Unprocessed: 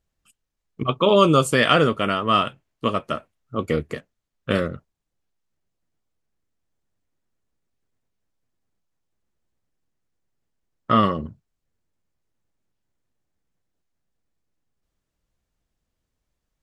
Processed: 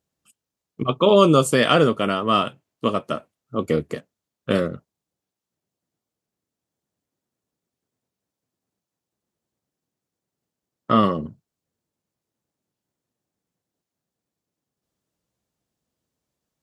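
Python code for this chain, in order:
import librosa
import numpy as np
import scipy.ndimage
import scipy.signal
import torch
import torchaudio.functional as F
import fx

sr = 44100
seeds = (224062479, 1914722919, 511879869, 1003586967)

y = scipy.signal.sosfilt(scipy.signal.butter(2, 130.0, 'highpass', fs=sr, output='sos'), x)
y = fx.peak_eq(y, sr, hz=1900.0, db=-5.5, octaves=1.7)
y = y * librosa.db_to_amplitude(2.5)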